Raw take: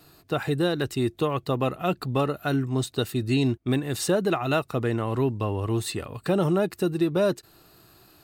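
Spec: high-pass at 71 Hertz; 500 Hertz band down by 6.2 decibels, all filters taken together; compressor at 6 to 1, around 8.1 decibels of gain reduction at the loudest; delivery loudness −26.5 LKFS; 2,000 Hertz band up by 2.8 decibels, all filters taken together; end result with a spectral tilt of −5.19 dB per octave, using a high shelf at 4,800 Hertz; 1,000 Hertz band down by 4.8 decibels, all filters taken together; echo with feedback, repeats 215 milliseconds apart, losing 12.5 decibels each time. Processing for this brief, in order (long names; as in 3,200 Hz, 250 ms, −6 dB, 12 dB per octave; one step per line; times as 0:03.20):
high-pass filter 71 Hz
parametric band 500 Hz −7 dB
parametric band 1,000 Hz −7.5 dB
parametric band 2,000 Hz +9 dB
high-shelf EQ 4,800 Hz −6.5 dB
downward compressor 6 to 1, threshold −30 dBFS
repeating echo 215 ms, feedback 24%, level −12.5 dB
level +8 dB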